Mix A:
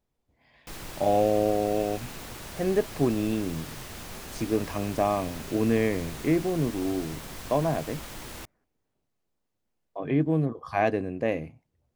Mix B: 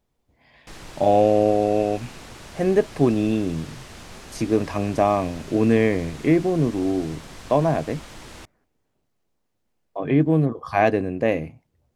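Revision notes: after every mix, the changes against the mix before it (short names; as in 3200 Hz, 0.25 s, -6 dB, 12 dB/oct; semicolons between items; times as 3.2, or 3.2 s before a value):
speech +6.0 dB; background: add LPF 8400 Hz 12 dB/oct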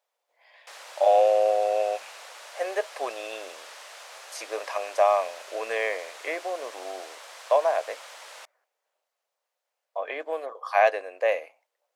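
master: add elliptic high-pass 540 Hz, stop band 80 dB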